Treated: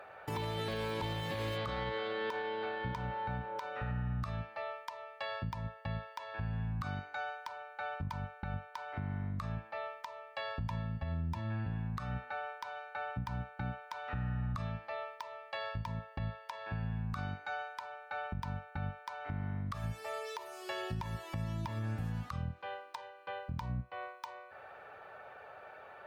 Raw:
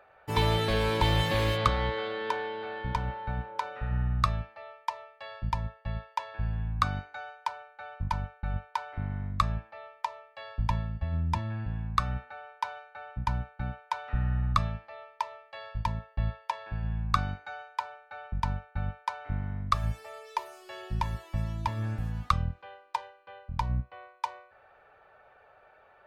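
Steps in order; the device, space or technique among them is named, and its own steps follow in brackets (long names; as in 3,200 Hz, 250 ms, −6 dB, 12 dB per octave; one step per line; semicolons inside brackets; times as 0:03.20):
podcast mastering chain (high-pass filter 94 Hz 12 dB per octave; de-essing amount 95%; downward compressor 3 to 1, threshold −43 dBFS, peak gain reduction 15 dB; brickwall limiter −35.5 dBFS, peak gain reduction 9.5 dB; level +7.5 dB; MP3 112 kbit/s 44,100 Hz)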